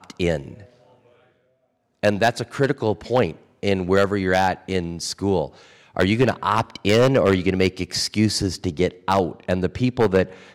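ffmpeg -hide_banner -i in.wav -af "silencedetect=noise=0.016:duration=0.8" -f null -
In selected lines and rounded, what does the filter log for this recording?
silence_start: 0.63
silence_end: 2.03 | silence_duration: 1.41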